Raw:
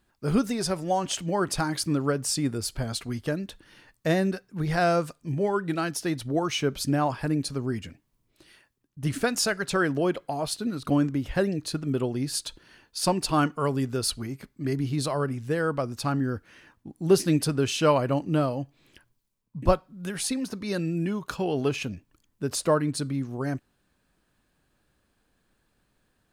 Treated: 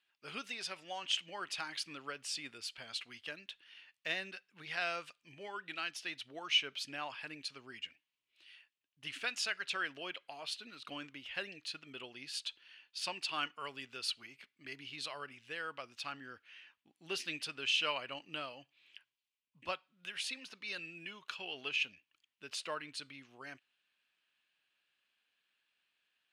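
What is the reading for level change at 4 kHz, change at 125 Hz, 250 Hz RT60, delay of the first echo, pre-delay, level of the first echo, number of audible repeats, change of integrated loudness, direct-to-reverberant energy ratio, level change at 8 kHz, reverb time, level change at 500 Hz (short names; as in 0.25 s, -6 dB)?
-3.0 dB, -32.5 dB, none, none, none, none, none, -12.5 dB, none, -15.0 dB, none, -21.5 dB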